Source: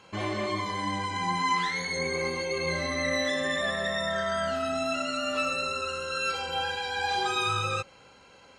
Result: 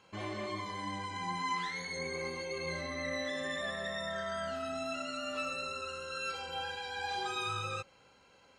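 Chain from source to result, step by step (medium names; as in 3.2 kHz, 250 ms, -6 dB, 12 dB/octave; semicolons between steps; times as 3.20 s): 2.81–3.35 s: treble shelf 4.9 kHz -5 dB; trim -8.5 dB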